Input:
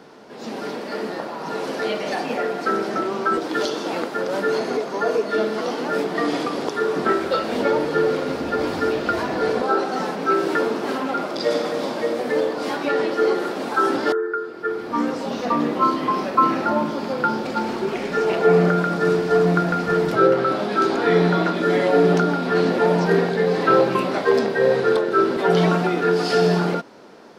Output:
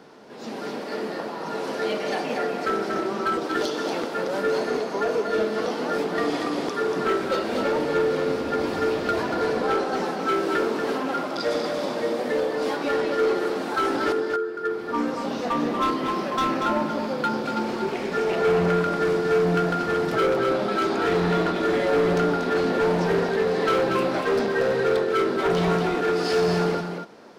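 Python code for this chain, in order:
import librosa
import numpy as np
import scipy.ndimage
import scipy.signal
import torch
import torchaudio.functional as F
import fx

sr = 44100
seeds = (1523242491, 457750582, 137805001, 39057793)

p1 = np.clip(x, -10.0 ** (-16.0 / 20.0), 10.0 ** (-16.0 / 20.0))
p2 = p1 + fx.echo_single(p1, sr, ms=236, db=-6.5, dry=0)
y = p2 * 10.0 ** (-3.0 / 20.0)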